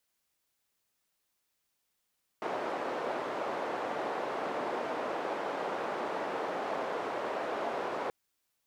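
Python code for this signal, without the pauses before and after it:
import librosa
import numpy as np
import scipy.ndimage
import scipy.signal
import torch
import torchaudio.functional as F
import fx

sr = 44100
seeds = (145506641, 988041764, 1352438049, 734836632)

y = fx.band_noise(sr, seeds[0], length_s=5.68, low_hz=470.0, high_hz=660.0, level_db=-35.0)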